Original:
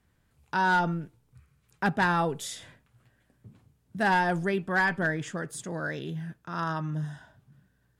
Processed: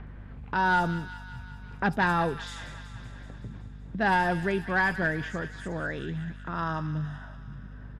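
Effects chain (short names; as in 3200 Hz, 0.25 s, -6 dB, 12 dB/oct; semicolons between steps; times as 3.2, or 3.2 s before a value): upward compressor, threshold -30 dBFS; low-pass opened by the level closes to 1600 Hz, open at -22.5 dBFS; on a send: thin delay 0.189 s, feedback 67%, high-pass 1700 Hz, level -10 dB; on the sum: hum 50 Hz, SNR 13 dB; bands offset in time lows, highs 70 ms, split 5800 Hz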